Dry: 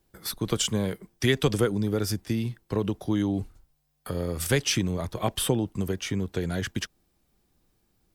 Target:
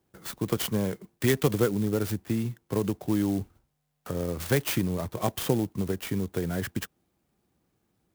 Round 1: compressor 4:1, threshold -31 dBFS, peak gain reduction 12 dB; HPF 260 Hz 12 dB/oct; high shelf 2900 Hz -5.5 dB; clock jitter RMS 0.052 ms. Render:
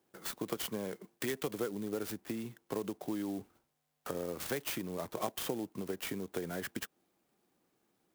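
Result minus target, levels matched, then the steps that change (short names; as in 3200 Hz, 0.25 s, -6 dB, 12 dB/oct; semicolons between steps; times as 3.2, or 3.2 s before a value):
compressor: peak gain reduction +12 dB; 125 Hz band -8.0 dB
change: HPF 86 Hz 12 dB/oct; remove: compressor 4:1, threshold -31 dBFS, peak gain reduction 12 dB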